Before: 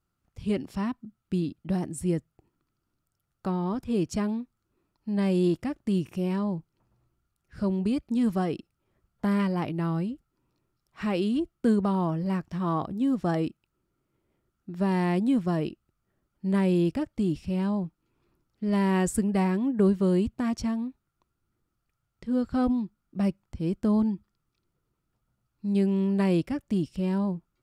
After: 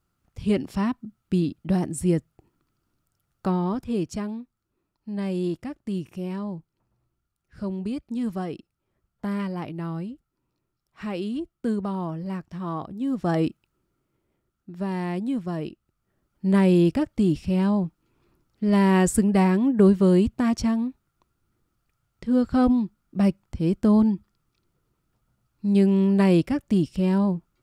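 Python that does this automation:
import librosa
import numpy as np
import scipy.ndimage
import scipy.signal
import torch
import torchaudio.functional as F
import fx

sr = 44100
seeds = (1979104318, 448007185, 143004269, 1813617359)

y = fx.gain(x, sr, db=fx.line((3.52, 5.0), (4.29, -3.0), (12.98, -3.0), (13.45, 5.5), (14.87, -3.0), (15.51, -3.0), (16.5, 5.5)))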